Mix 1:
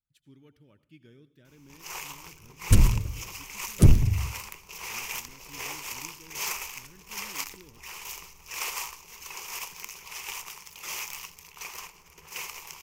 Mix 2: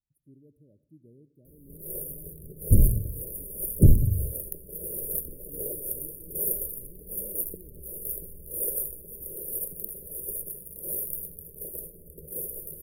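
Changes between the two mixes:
first sound +11.0 dB
master: add linear-phase brick-wall band-stop 640–9,100 Hz

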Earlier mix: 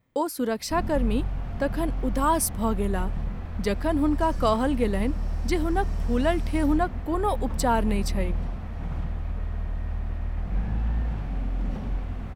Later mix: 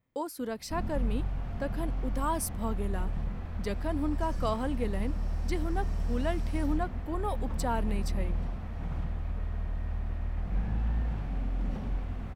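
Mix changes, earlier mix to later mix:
speech −8.5 dB
background −3.5 dB

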